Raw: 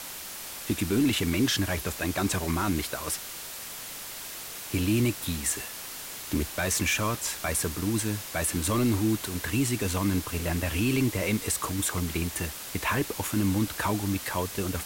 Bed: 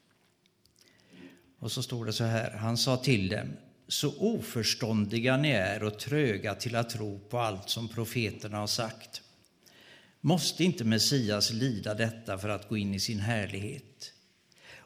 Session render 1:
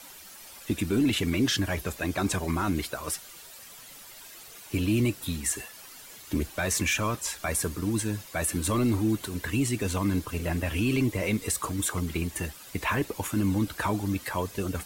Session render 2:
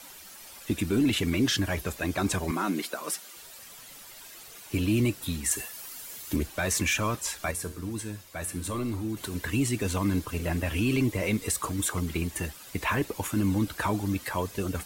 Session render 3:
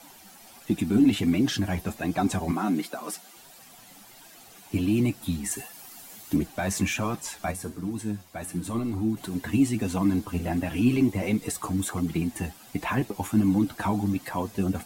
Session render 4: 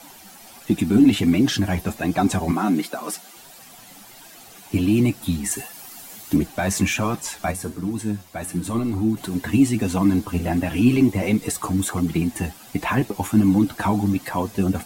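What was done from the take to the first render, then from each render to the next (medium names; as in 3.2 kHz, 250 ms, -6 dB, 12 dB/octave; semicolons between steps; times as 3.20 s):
noise reduction 11 dB, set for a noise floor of -40 dBFS
2.51–3.37 s: steep high-pass 180 Hz; 5.51–6.36 s: treble shelf 7.1 kHz +8.5 dB; 7.51–9.17 s: feedback comb 90 Hz, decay 0.5 s
flange 1.4 Hz, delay 5.7 ms, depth 5.6 ms, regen +39%; small resonant body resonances 210/740 Hz, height 11 dB, ringing for 20 ms
trim +5.5 dB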